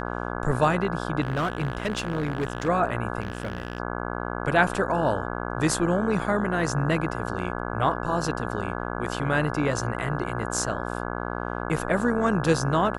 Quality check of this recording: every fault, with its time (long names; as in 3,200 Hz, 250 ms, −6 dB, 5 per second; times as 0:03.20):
mains buzz 60 Hz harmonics 28 −31 dBFS
0:01.21–0:02.69: clipping −21.5 dBFS
0:03.20–0:03.80: clipping −24.5 dBFS